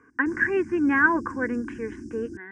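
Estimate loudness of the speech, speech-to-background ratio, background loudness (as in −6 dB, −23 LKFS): −24.5 LKFS, 15.0 dB, −39.5 LKFS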